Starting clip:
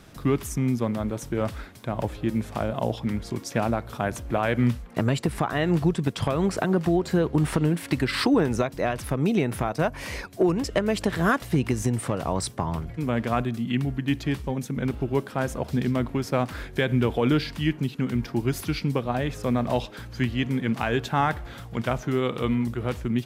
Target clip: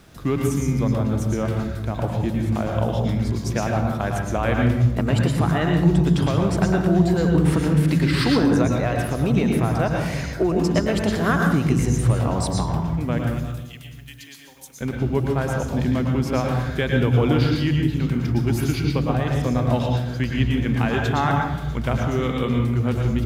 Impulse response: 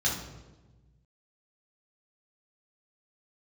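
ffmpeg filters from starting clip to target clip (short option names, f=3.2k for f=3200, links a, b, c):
-filter_complex "[0:a]acrusher=bits=10:mix=0:aa=0.000001,asettb=1/sr,asplit=3[a][b][c];[a]atrim=end=13.184[d];[b]atrim=start=13.18:end=14.81,asetpts=PTS-STARTPTS,afade=t=in:d=0.004:c=qsin,afade=t=out:st=1.626:d=0.004:c=qsin,aderivative[e];[c]atrim=start=14.806[f];[d][e]acrossfade=d=0.004:c1=hsin:c2=qsin[g];[g][f]acrossfade=d=0.004:c1=qsin:c2=hsin,asplit=2[h][i];[1:a]atrim=start_sample=2205,adelay=104[j];[i][j]afir=irnorm=-1:irlink=0,volume=-10dB[k];[h][k]amix=inputs=2:normalize=0"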